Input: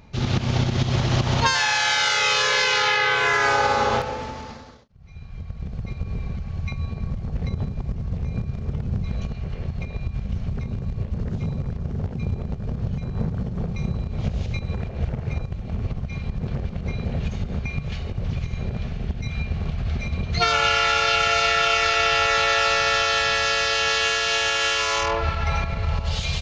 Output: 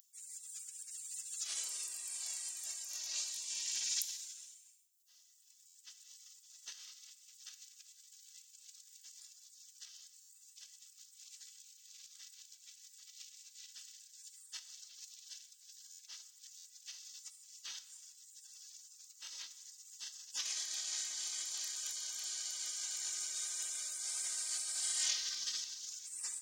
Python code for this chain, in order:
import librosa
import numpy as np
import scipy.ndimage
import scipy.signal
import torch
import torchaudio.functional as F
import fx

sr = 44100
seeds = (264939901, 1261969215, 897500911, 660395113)

y = scipy.signal.sosfilt(scipy.signal.butter(2, 650.0, 'highpass', fs=sr, output='sos'), x)
y = fx.over_compress(y, sr, threshold_db=-24.0, ratio=-0.5)
y = y + 0.48 * np.pad(y, (int(2.8 * sr / 1000.0), 0))[:len(y)]
y = fx.spec_gate(y, sr, threshold_db=-30, keep='weak')
y = np.diff(y, prepend=0.0)
y = fx.rev_plate(y, sr, seeds[0], rt60_s=1.1, hf_ratio=1.0, predelay_ms=0, drr_db=12.5)
y = fx.buffer_glitch(y, sr, at_s=(5.67, 10.21, 15.91, 16.57), block=512, repeats=6)
y = y * 10.0 ** (11.5 / 20.0)